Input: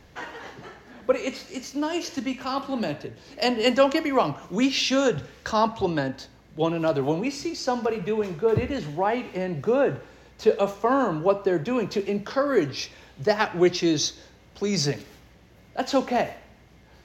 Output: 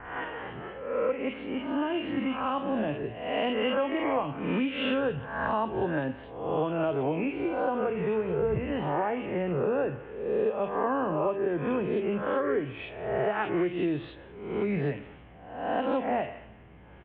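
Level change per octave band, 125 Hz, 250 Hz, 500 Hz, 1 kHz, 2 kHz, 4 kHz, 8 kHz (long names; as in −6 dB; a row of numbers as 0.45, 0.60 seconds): −3.5 dB, −4.0 dB, −4.0 dB, −3.5 dB, −3.5 dB, −11.0 dB, below −40 dB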